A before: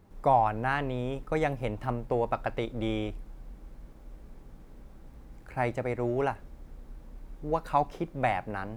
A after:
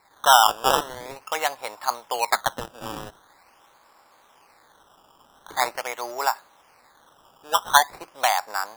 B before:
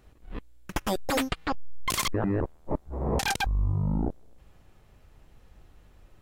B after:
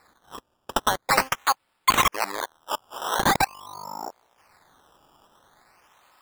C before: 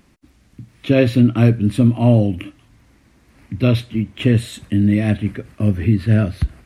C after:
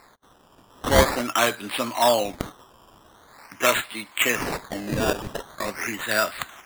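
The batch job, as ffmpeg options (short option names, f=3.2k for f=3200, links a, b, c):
-af "highpass=f=990:t=q:w=2.2,acrusher=samples=14:mix=1:aa=0.000001:lfo=1:lforange=14:lforate=0.44,volume=6dB"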